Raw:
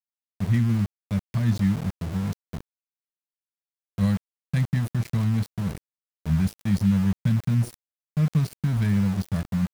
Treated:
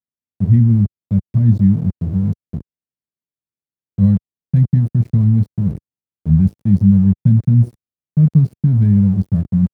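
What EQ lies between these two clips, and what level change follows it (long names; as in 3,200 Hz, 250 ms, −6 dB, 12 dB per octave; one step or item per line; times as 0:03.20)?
high-pass filter 80 Hz 12 dB per octave
tilt shelving filter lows +8 dB, about 730 Hz
low-shelf EQ 450 Hz +11.5 dB
−6.5 dB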